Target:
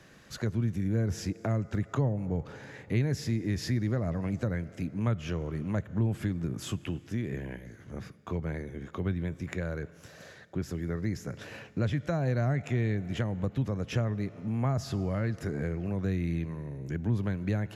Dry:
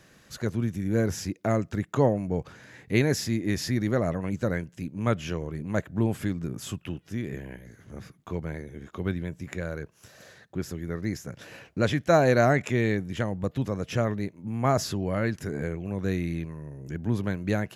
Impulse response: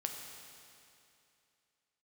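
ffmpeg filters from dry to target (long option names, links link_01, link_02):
-filter_complex "[0:a]highshelf=frequency=6900:gain=-7.5,asplit=2[link_01][link_02];[1:a]atrim=start_sample=2205[link_03];[link_02][link_03]afir=irnorm=-1:irlink=0,volume=-14dB[link_04];[link_01][link_04]amix=inputs=2:normalize=0,acrossover=split=160[link_05][link_06];[link_06]acompressor=threshold=-32dB:ratio=6[link_07];[link_05][link_07]amix=inputs=2:normalize=0"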